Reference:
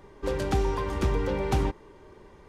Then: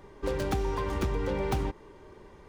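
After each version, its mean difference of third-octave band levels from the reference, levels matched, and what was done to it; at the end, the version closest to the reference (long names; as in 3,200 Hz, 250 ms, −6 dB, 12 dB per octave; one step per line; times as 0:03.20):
2.0 dB: stylus tracing distortion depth 0.08 ms
downward compressor, threshold −25 dBFS, peak gain reduction 6 dB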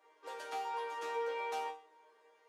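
9.5 dB: high-pass filter 470 Hz 24 dB per octave
resonators tuned to a chord D#3 fifth, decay 0.38 s
level +4.5 dB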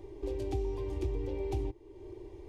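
7.0 dB: drawn EQ curve 120 Hz 0 dB, 170 Hz −29 dB, 340 Hz +6 dB, 520 Hz −9 dB, 780 Hz −7 dB, 1,400 Hz −24 dB, 2,300 Hz −9 dB
downward compressor 2 to 1, threshold −47 dBFS, peak gain reduction 14.5 dB
level +5.5 dB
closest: first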